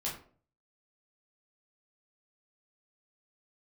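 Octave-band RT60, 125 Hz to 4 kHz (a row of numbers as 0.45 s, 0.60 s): 0.65 s, 0.55 s, 0.50 s, 0.40 s, 0.35 s, 0.25 s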